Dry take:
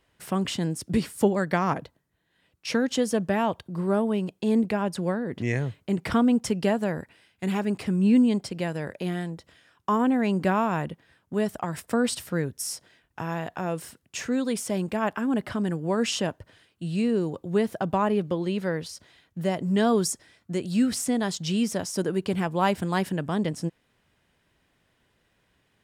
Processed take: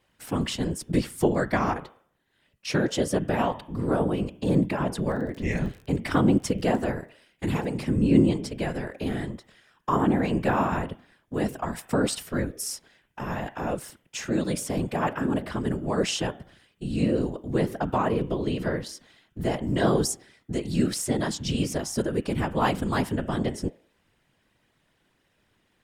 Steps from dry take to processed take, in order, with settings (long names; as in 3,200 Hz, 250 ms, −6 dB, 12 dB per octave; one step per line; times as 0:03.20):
hum removal 102.8 Hz, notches 35
random phases in short frames
0:05.09–0:06.81: surface crackle 48 per second −36 dBFS